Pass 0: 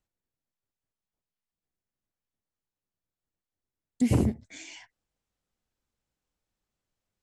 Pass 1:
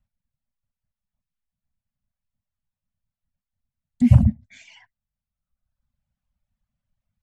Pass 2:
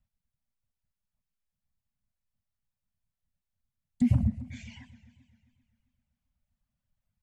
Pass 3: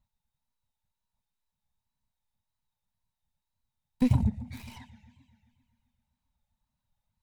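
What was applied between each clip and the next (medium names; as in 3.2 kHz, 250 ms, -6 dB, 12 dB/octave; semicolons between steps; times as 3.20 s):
reverb removal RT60 1.2 s; elliptic band-stop 250–560 Hz; tone controls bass +13 dB, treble -10 dB; trim +1.5 dB
compression 4:1, threshold -18 dBFS, peak gain reduction 10.5 dB; modulated delay 132 ms, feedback 66%, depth 193 cents, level -17 dB; trim -3 dB
tracing distortion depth 0.43 ms; small resonant body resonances 900/3800 Hz, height 15 dB, ringing for 30 ms; wow and flutter 66 cents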